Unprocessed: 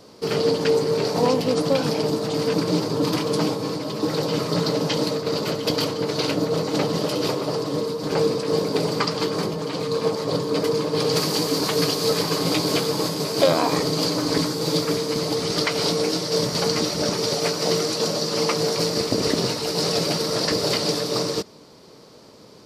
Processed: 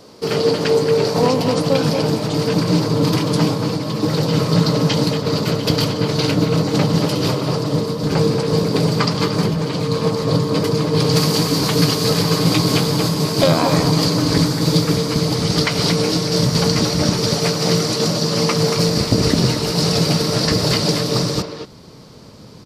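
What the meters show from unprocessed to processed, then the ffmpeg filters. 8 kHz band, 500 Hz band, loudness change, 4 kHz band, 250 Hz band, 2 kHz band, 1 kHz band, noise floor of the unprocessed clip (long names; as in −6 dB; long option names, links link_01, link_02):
+4.0 dB, +2.5 dB, +5.0 dB, +4.0 dB, +7.0 dB, +4.5 dB, +4.0 dB, −47 dBFS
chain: -filter_complex "[0:a]asubboost=boost=4:cutoff=190,asplit=2[link_01][link_02];[link_02]adelay=230,highpass=300,lowpass=3400,asoftclip=type=hard:threshold=-14.5dB,volume=-6dB[link_03];[link_01][link_03]amix=inputs=2:normalize=0,volume=4dB"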